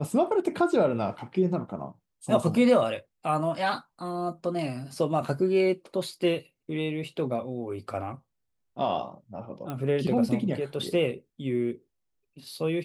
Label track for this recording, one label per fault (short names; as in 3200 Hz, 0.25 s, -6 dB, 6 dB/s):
9.700000	9.700000	pop -21 dBFS